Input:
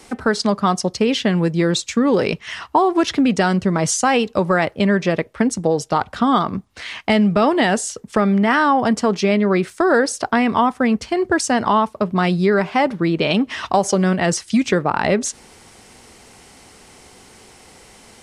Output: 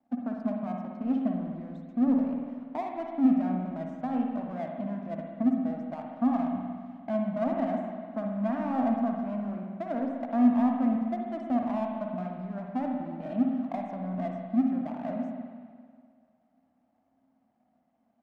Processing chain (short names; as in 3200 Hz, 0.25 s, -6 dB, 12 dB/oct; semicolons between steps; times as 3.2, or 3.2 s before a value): low shelf 440 Hz +7 dB; limiter -8.5 dBFS, peak gain reduction 7 dB; double band-pass 410 Hz, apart 1.4 oct; power-law curve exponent 1.4; spring tank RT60 1.9 s, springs 49/60 ms, chirp 35 ms, DRR 1 dB; gain -4.5 dB